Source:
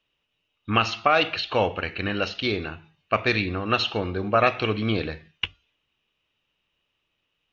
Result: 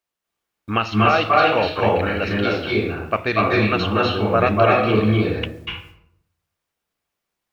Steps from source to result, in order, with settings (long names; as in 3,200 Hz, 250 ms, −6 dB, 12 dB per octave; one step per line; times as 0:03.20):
in parallel at −7 dB: bit-depth reduction 8 bits, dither triangular
on the sum: high-shelf EQ 3,100 Hz −9.5 dB
noise gate −51 dBFS, range −23 dB
low-shelf EQ 200 Hz −3 dB
convolution reverb RT60 0.70 s, pre-delay 236 ms, DRR −3.5 dB
level −1 dB